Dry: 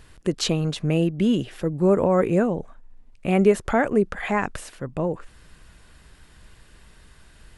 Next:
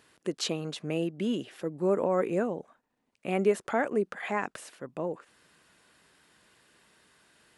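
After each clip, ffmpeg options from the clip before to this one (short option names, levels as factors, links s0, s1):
-af "highpass=240,volume=0.473"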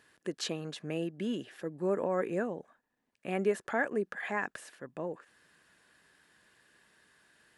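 -af "equalizer=f=1700:w=7.4:g=10,volume=0.596"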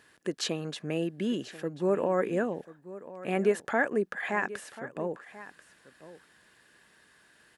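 -af "aecho=1:1:1038:0.15,volume=1.58"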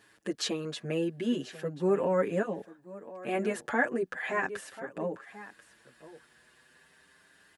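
-filter_complex "[0:a]asplit=2[s0][s1];[s1]adelay=6.9,afreqshift=0.38[s2];[s0][s2]amix=inputs=2:normalize=1,volume=1.33"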